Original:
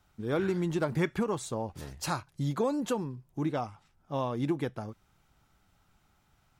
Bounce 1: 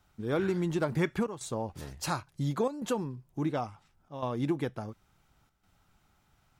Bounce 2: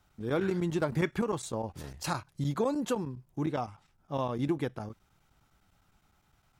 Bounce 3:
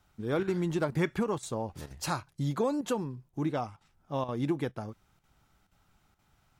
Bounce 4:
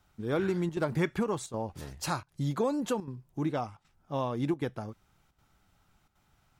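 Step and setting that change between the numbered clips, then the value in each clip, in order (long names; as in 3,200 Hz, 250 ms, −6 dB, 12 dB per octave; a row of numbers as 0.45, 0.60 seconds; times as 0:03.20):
square-wave tremolo, speed: 0.71, 9.8, 2.1, 1.3 Hertz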